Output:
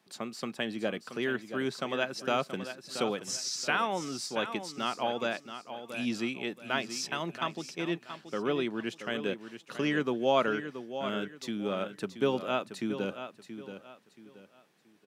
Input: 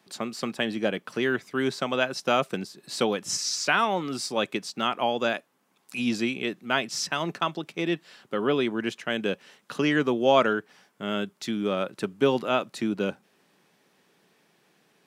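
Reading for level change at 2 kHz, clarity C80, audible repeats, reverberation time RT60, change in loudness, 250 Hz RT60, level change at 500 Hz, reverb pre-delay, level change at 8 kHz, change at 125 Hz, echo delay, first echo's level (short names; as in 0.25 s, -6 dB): -5.5 dB, none, 3, none, -5.5 dB, none, -5.5 dB, none, -5.5 dB, -5.5 dB, 0.678 s, -10.5 dB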